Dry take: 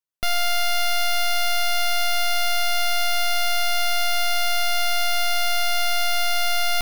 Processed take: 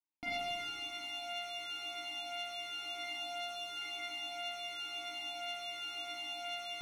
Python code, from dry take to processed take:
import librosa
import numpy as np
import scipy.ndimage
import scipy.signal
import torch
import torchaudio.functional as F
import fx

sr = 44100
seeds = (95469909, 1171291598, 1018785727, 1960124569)

y = fx.peak_eq(x, sr, hz=2200.0, db=-12.5, octaves=0.27, at=(3.03, 3.77))
y = fx.rider(y, sr, range_db=10, speed_s=0.5)
y = fx.vowel_filter(y, sr, vowel='u')
y = fx.rev_schroeder(y, sr, rt60_s=2.3, comb_ms=31, drr_db=-7.5)
y = fx.comb_cascade(y, sr, direction='falling', hz=0.97)
y = F.gain(torch.from_numpy(y), 4.0).numpy()